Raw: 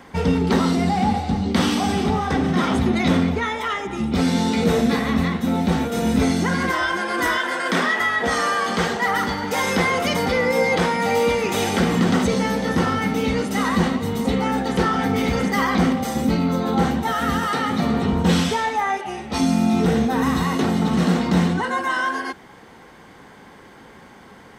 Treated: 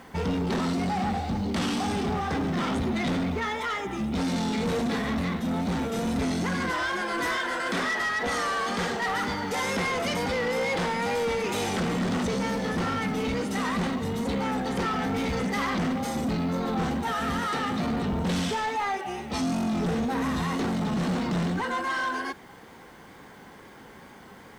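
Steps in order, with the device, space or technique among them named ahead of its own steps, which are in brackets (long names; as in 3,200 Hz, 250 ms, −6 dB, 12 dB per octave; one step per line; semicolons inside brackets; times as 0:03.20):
compact cassette (soft clipping −20.5 dBFS, distortion −10 dB; low-pass filter 12,000 Hz 12 dB per octave; tape wow and flutter; white noise bed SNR 38 dB)
level −3 dB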